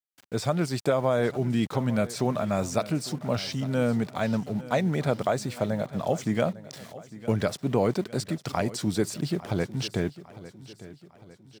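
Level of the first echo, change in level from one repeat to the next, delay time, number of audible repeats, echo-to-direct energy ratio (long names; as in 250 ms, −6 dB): −17.0 dB, −6.5 dB, 853 ms, 3, −16.0 dB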